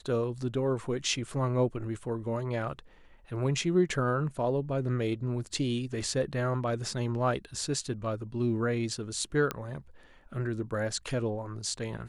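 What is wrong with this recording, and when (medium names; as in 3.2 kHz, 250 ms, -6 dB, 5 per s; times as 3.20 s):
9.51 s: pop -16 dBFS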